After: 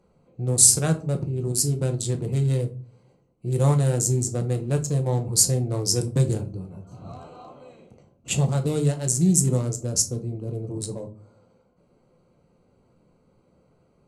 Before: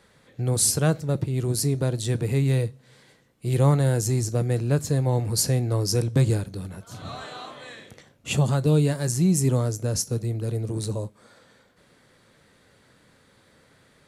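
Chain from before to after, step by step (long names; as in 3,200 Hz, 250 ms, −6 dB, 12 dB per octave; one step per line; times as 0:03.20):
adaptive Wiener filter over 25 samples
parametric band 7,600 Hz +11.5 dB 0.97 octaves
convolution reverb RT60 0.35 s, pre-delay 6 ms, DRR 5 dB
level −2.5 dB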